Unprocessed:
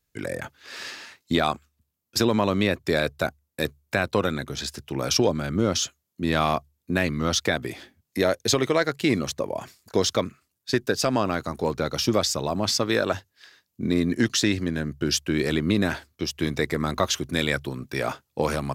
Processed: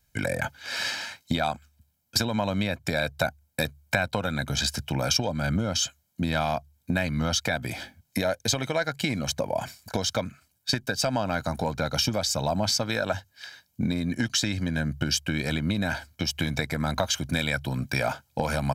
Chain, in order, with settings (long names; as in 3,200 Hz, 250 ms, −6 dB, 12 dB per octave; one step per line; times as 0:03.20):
downward compressor 6 to 1, threshold −29 dBFS, peak gain reduction 12.5 dB
comb filter 1.3 ms, depth 70%
level +5.5 dB